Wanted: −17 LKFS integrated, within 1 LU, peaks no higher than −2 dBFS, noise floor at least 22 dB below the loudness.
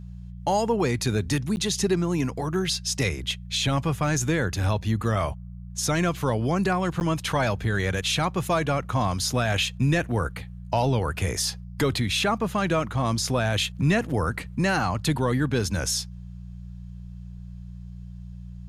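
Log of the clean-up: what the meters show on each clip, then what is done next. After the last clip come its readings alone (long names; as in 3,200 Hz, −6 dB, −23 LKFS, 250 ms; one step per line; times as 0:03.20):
number of dropouts 2; longest dropout 9.9 ms; mains hum 60 Hz; hum harmonics up to 180 Hz; level of the hum −38 dBFS; integrated loudness −25.0 LKFS; sample peak −12.0 dBFS; target loudness −17.0 LKFS
→ repair the gap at 0:01.56/0:07.00, 9.9 ms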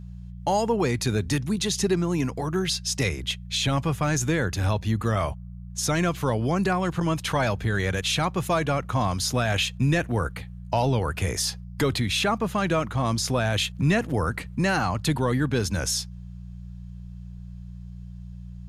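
number of dropouts 0; mains hum 60 Hz; hum harmonics up to 180 Hz; level of the hum −38 dBFS
→ hum removal 60 Hz, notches 3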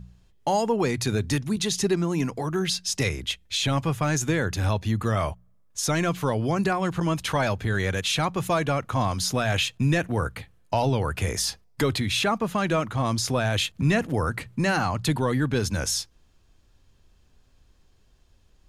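mains hum none found; integrated loudness −25.5 LKFS; sample peak −11.0 dBFS; target loudness −17.0 LKFS
→ level +8.5 dB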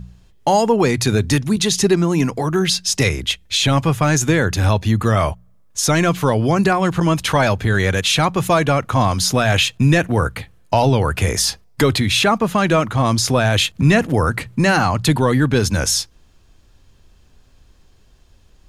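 integrated loudness −17.0 LKFS; sample peak −2.5 dBFS; background noise floor −51 dBFS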